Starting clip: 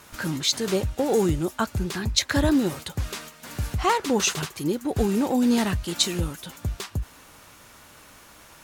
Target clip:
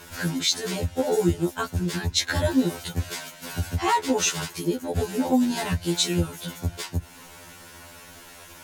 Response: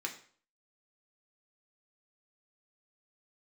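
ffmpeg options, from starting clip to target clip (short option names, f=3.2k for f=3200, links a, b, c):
-filter_complex "[0:a]bandreject=f=1.2k:w=9,asplit=2[a][b];[b]acompressor=threshold=-34dB:ratio=6,volume=1.5dB[c];[a][c]amix=inputs=2:normalize=0,afftfilt=real='re*2*eq(mod(b,4),0)':imag='im*2*eq(mod(b,4),0)':win_size=2048:overlap=0.75"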